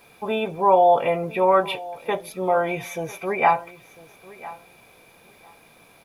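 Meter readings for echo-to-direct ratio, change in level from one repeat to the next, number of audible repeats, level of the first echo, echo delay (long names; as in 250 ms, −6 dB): −19.0 dB, −15.5 dB, 2, −19.0 dB, 1,000 ms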